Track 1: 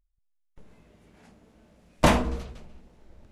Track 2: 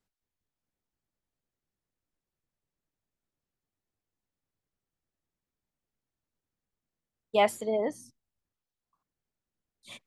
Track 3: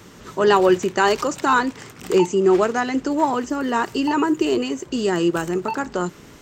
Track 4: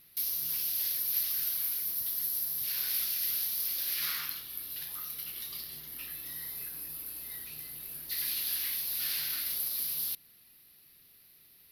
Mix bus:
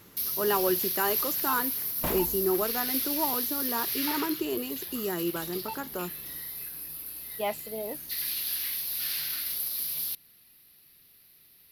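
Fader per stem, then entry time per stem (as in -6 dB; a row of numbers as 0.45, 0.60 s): -14.0, -7.5, -11.5, +1.5 dB; 0.00, 0.05, 0.00, 0.00 s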